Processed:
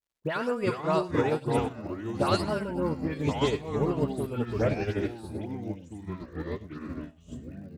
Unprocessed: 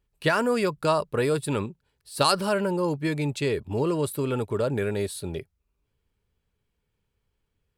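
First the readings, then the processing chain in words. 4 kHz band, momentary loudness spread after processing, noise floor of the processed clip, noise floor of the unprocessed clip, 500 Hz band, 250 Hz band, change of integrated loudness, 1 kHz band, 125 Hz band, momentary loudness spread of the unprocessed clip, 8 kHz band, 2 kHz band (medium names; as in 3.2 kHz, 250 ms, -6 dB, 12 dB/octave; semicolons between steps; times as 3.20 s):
-7.0 dB, 13 LU, -54 dBFS, -78 dBFS, -3.0 dB, -1.0 dB, -4.0 dB, -3.0 dB, -1.0 dB, 8 LU, -11.0 dB, -5.5 dB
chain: treble shelf 5.9 kHz -11 dB; in parallel at -2 dB: peak limiter -18 dBFS, peak gain reduction 9 dB; on the sum: ever faster or slower copies 326 ms, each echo -5 st, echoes 3; phase dispersion highs, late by 110 ms, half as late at 2.6 kHz; crackle 120 per s -37 dBFS; on a send: delay 101 ms -12 dB; on the sum: upward expansion 2.5:1, over -34 dBFS; trim -5 dB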